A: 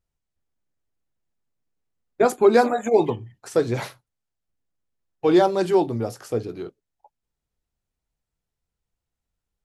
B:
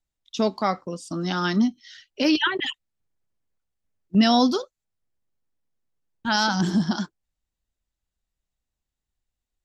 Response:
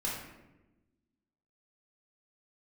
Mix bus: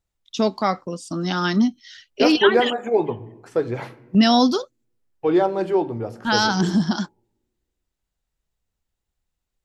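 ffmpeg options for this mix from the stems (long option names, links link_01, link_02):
-filter_complex "[0:a]bass=frequency=250:gain=-1,treble=frequency=4000:gain=-13,bandreject=frequency=3800:width=19,volume=-2.5dB,asplit=2[link_01][link_02];[link_02]volume=-17.5dB[link_03];[1:a]volume=2.5dB[link_04];[2:a]atrim=start_sample=2205[link_05];[link_03][link_05]afir=irnorm=-1:irlink=0[link_06];[link_01][link_04][link_06]amix=inputs=3:normalize=0"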